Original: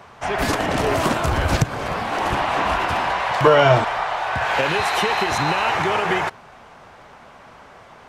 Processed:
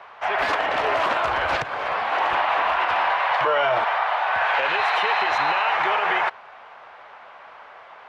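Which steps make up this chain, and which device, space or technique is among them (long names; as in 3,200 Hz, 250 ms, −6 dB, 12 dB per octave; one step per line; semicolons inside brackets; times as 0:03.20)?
DJ mixer with the lows and highs turned down (three-way crossover with the lows and the highs turned down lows −22 dB, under 520 Hz, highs −24 dB, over 3,800 Hz; brickwall limiter −14.5 dBFS, peak gain reduction 9.5 dB)
level +2.5 dB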